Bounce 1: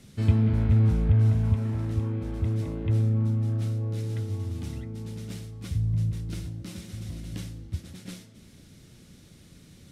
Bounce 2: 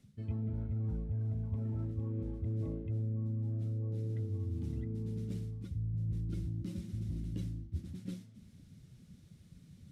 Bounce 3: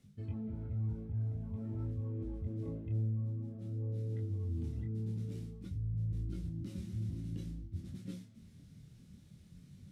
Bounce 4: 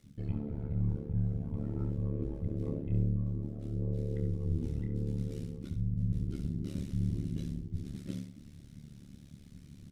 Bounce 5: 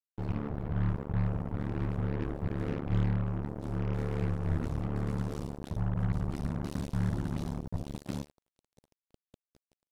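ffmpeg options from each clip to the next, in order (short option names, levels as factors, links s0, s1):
-af "afftdn=nr=14:nf=-39,areverse,acompressor=threshold=0.0224:ratio=12,areverse"
-af "alimiter=level_in=2.37:limit=0.0631:level=0:latency=1:release=88,volume=0.422,flanger=delay=20:depth=6.7:speed=0.5,volume=1.41"
-af "aecho=1:1:66|132|198|264:0.376|0.113|0.0338|0.0101,tremolo=f=72:d=0.974,volume=2.66"
-af "acrusher=bits=5:mix=0:aa=0.5,volume=1.19"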